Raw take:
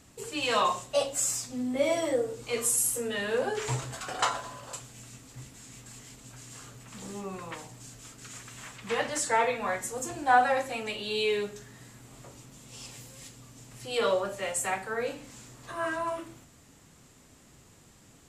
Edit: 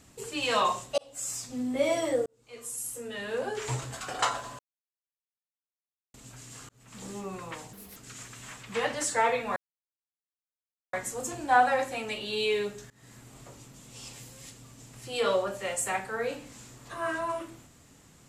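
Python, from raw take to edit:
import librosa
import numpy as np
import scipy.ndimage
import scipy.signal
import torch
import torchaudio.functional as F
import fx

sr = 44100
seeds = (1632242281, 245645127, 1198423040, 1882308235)

y = fx.edit(x, sr, fx.fade_in_span(start_s=0.98, length_s=0.57),
    fx.fade_in_span(start_s=2.26, length_s=1.68),
    fx.silence(start_s=4.59, length_s=1.55),
    fx.fade_in_span(start_s=6.69, length_s=0.33),
    fx.speed_span(start_s=7.73, length_s=0.38, speed=1.64),
    fx.insert_silence(at_s=9.71, length_s=1.37),
    fx.fade_in_from(start_s=11.68, length_s=0.25, floor_db=-24.0), tone=tone)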